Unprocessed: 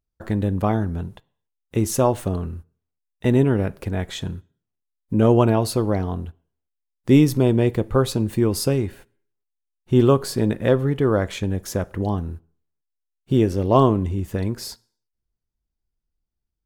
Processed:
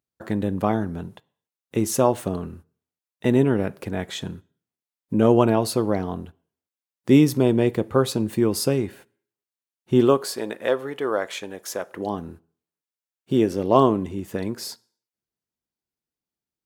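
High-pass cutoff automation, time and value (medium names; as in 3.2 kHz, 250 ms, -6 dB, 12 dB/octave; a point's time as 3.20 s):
9.94 s 150 Hz
10.36 s 500 Hz
11.80 s 500 Hz
12.27 s 190 Hz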